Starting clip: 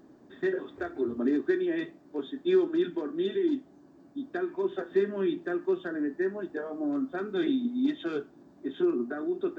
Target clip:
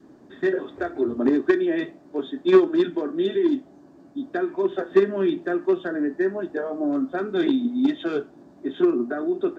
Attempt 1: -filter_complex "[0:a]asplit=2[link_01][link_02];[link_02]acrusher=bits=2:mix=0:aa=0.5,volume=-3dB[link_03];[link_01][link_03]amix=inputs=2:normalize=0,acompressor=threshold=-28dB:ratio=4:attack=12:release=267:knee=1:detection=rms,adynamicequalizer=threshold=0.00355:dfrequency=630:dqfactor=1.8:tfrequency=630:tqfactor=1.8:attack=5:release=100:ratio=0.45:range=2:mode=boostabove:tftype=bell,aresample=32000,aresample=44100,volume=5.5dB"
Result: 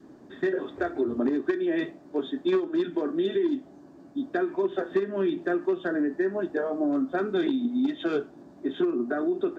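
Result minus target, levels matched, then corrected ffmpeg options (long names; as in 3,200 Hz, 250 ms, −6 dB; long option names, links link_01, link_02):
downward compressor: peak gain reduction +12 dB
-filter_complex "[0:a]asplit=2[link_01][link_02];[link_02]acrusher=bits=2:mix=0:aa=0.5,volume=-3dB[link_03];[link_01][link_03]amix=inputs=2:normalize=0,adynamicequalizer=threshold=0.00355:dfrequency=630:dqfactor=1.8:tfrequency=630:tqfactor=1.8:attack=5:release=100:ratio=0.45:range=2:mode=boostabove:tftype=bell,aresample=32000,aresample=44100,volume=5.5dB"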